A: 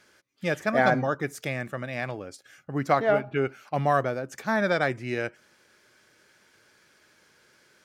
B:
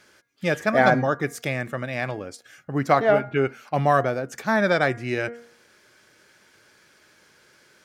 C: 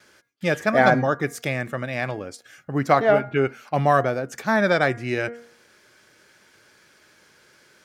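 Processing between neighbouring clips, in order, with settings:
hum removal 236 Hz, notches 9; level +4 dB
noise gate with hold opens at −52 dBFS; level +1 dB

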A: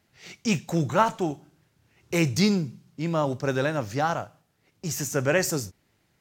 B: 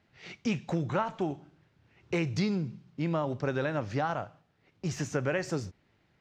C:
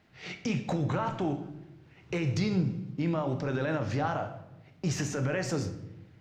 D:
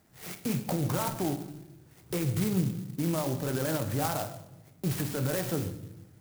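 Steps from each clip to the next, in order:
low-pass filter 3,600 Hz 12 dB per octave; downward compressor 6 to 1, threshold −26 dBFS, peak gain reduction 11.5 dB
brickwall limiter −26.5 dBFS, peak gain reduction 10.5 dB; convolution reverb RT60 0.90 s, pre-delay 6 ms, DRR 7 dB; level +4.5 dB
converter with an unsteady clock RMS 0.1 ms

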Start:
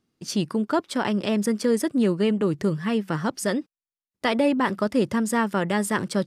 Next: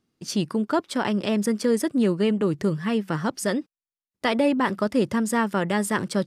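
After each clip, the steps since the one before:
no processing that can be heard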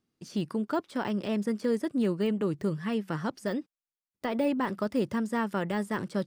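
de-essing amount 95%
level −6 dB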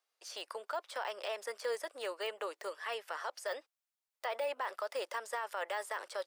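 Butterworth high-pass 540 Hz 36 dB per octave
brickwall limiter −29.5 dBFS, peak gain reduction 9 dB
level +1.5 dB

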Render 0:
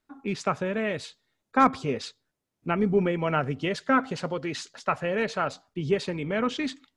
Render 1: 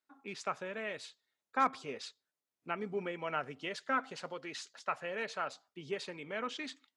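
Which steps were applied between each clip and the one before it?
high-pass filter 710 Hz 6 dB per octave
level −7.5 dB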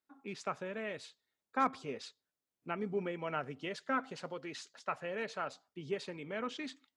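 low-shelf EQ 460 Hz +7.5 dB
level −3 dB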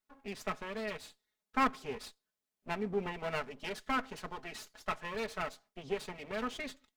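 lower of the sound and its delayed copy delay 4.7 ms
level +2 dB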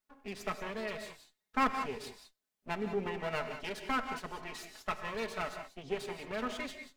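reverb whose tail is shaped and stops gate 210 ms rising, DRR 7 dB

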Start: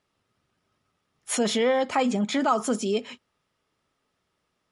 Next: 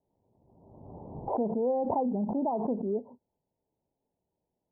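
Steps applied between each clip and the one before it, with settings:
Butterworth low-pass 950 Hz 96 dB per octave
background raised ahead of every attack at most 40 dB per second
level −5.5 dB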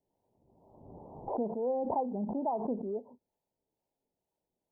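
parametric band 100 Hz −5.5 dB 2.6 octaves
two-band tremolo in antiphase 2.2 Hz, depth 50%, crossover 520 Hz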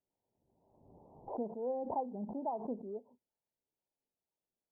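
expander for the loud parts 1.5 to 1, over −41 dBFS
level −3.5 dB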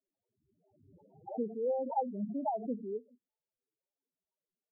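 spectral peaks only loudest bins 4
level +5 dB

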